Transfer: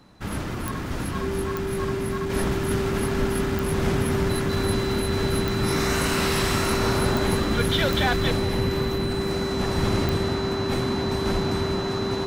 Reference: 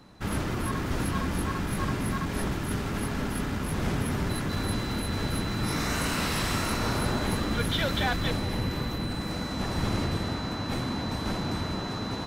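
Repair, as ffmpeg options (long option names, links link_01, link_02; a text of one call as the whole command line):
ffmpeg -i in.wav -filter_complex "[0:a]adeclick=threshold=4,bandreject=frequency=390:width=30,asplit=3[link_01][link_02][link_03];[link_01]afade=type=out:start_time=3.18:duration=0.02[link_04];[link_02]highpass=frequency=140:width=0.5412,highpass=frequency=140:width=1.3066,afade=type=in:start_time=3.18:duration=0.02,afade=type=out:start_time=3.3:duration=0.02[link_05];[link_03]afade=type=in:start_time=3.3:duration=0.02[link_06];[link_04][link_05][link_06]amix=inputs=3:normalize=0,asplit=3[link_07][link_08][link_09];[link_07]afade=type=out:start_time=11.33:duration=0.02[link_10];[link_08]highpass=frequency=140:width=0.5412,highpass=frequency=140:width=1.3066,afade=type=in:start_time=11.33:duration=0.02,afade=type=out:start_time=11.45:duration=0.02[link_11];[link_09]afade=type=in:start_time=11.45:duration=0.02[link_12];[link_10][link_11][link_12]amix=inputs=3:normalize=0,asetnsamples=nb_out_samples=441:pad=0,asendcmd='2.3 volume volume -4.5dB',volume=0dB" out.wav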